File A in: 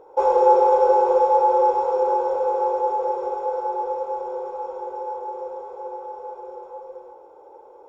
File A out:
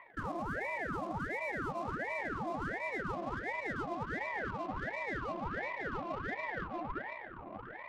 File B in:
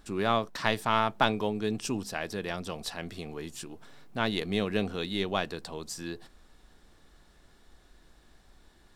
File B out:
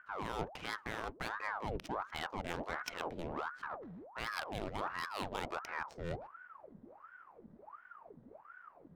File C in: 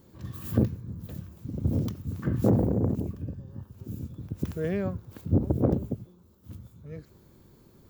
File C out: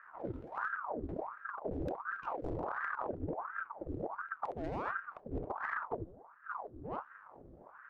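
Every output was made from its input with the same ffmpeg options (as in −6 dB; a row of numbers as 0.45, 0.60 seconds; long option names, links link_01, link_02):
-af "adynamicsmooth=sensitivity=6.5:basefreq=550,alimiter=limit=-15.5dB:level=0:latency=1:release=119,areverse,acompressor=threshold=-36dB:ratio=16,areverse,aeval=exprs='val(0)*sin(2*PI*830*n/s+830*0.8/1.4*sin(2*PI*1.4*n/s))':channel_layout=same,volume=4dB"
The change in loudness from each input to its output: −17.5, −10.0, −11.0 LU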